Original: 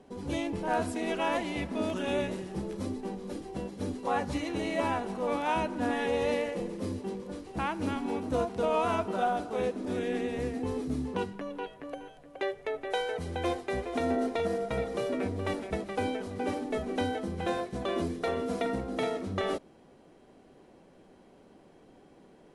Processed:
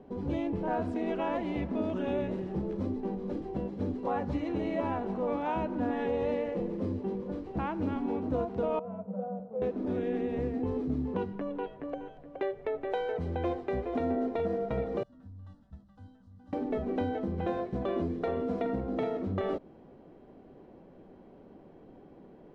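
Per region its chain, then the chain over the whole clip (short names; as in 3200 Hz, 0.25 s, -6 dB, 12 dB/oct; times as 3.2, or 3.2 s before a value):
8.79–9.62 double band-pass 310 Hz, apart 1.4 oct + bell 380 Hz -12.5 dB 0.35 oct
15.03–16.53 passive tone stack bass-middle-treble 6-0-2 + fixed phaser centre 960 Hz, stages 4
whole clip: tilt shelf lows +6.5 dB, about 1300 Hz; compressor 2:1, threshold -29 dBFS; LPF 4200 Hz 12 dB/oct; gain -1.5 dB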